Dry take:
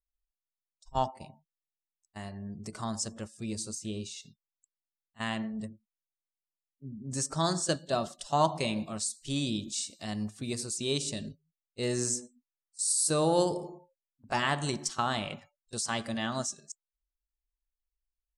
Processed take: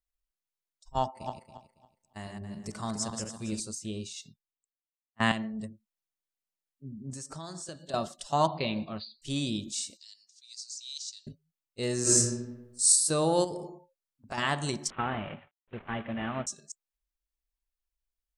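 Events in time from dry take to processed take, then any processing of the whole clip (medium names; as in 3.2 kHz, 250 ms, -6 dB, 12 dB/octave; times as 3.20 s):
1.02–3.60 s: backward echo that repeats 139 ms, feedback 49%, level -4.5 dB
4.13–5.32 s: three bands expanded up and down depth 100%
7.10–7.94 s: compression, threshold -38 dBFS
8.47–9.22 s: brick-wall FIR low-pass 4.9 kHz
9.97–11.27 s: Butterworth band-pass 5.3 kHz, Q 2
12.02–12.90 s: reverb throw, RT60 1 s, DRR -11.5 dB
13.44–14.38 s: compression 5:1, threshold -32 dBFS
14.90–16.47 s: CVSD coder 16 kbps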